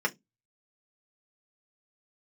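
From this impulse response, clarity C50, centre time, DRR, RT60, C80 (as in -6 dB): 27.0 dB, 5 ms, -1.0 dB, 0.15 s, 37.5 dB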